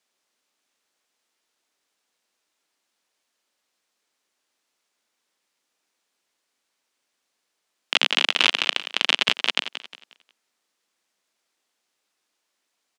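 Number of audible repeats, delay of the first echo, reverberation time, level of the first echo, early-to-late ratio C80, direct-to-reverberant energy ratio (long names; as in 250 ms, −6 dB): 3, 179 ms, no reverb audible, −11.0 dB, no reverb audible, no reverb audible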